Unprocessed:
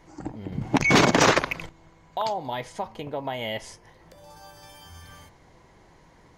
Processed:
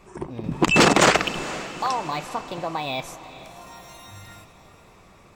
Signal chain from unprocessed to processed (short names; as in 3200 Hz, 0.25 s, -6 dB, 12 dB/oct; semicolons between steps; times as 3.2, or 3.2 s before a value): wide varispeed 1.19×; diffused feedback echo 0.458 s, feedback 54%, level -15 dB; gain +2.5 dB